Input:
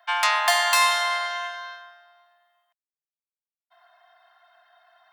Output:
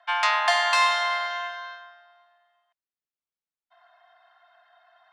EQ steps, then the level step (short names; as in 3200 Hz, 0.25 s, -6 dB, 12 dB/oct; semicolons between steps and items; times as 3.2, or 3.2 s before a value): air absorption 99 m; 0.0 dB